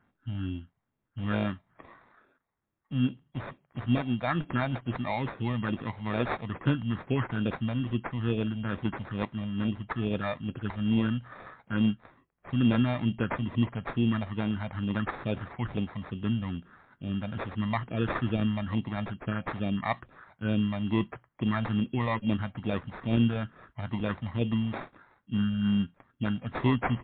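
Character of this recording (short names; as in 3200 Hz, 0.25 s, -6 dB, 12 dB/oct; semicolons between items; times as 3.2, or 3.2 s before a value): phasing stages 4, 2.3 Hz, lowest notch 350–1100 Hz; aliases and images of a low sample rate 3000 Hz, jitter 0%; MP3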